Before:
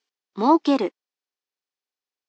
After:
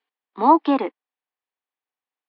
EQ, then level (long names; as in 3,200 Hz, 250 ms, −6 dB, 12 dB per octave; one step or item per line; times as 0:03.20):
loudspeaker in its box 150–4,100 Hz, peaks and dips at 160 Hz −10 dB, 380 Hz −10 dB, 570 Hz −6 dB, 1,400 Hz −5 dB
three-way crossover with the lows and the highs turned down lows −15 dB, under 260 Hz, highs −21 dB, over 3,200 Hz
parametric band 2,600 Hz −4 dB 1.1 octaves
+6.5 dB